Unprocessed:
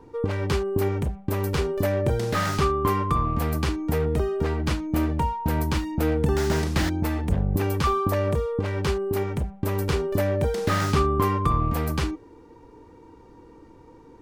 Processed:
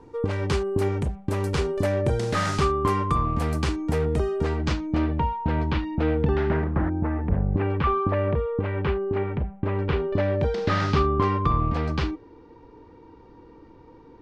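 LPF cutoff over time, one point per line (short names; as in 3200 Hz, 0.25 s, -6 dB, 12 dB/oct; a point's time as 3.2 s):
LPF 24 dB/oct
4.41 s 9900 Hz
5.16 s 3700 Hz
6.3 s 3700 Hz
6.78 s 1400 Hz
7.78 s 2800 Hz
9.78 s 2800 Hz
10.49 s 5000 Hz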